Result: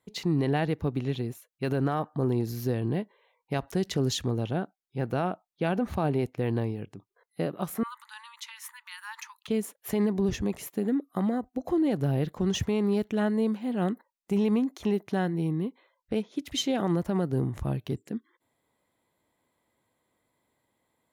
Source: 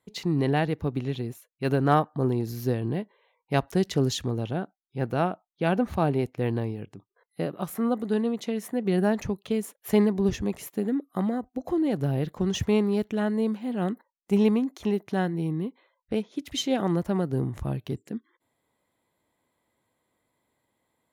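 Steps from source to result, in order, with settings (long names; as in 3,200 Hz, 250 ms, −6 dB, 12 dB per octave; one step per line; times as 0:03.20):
brickwall limiter −18 dBFS, peak gain reduction 10 dB
0:07.83–0:09.48: linear-phase brick-wall high-pass 850 Hz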